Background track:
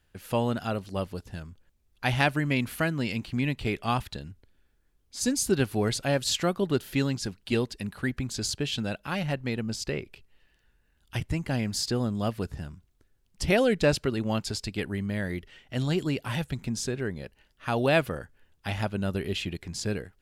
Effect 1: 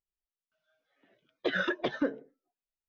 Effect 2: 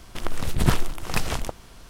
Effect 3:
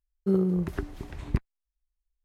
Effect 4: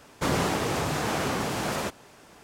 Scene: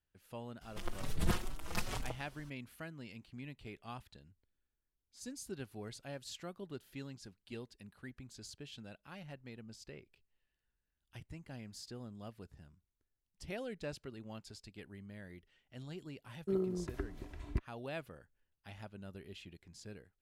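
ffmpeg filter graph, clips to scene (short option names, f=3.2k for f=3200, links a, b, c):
-filter_complex "[0:a]volume=-20dB[a];[2:a]asplit=2[b][c];[c]adelay=4.8,afreqshift=2.2[d];[b][d]amix=inputs=2:normalize=1[e];[3:a]aecho=1:1:3:0.47[f];[e]atrim=end=1.89,asetpts=PTS-STARTPTS,volume=-9dB,afade=t=in:d=0.004:c=hsin,afade=t=out:st=1.886:d=0.004:c=hsin,adelay=610[g];[f]atrim=end=2.24,asetpts=PTS-STARTPTS,volume=-10dB,afade=t=in:d=0.004:c=hsin,afade=t=out:st=2.236:d=0.004:c=hsin,adelay=16210[h];[a][g][h]amix=inputs=3:normalize=0"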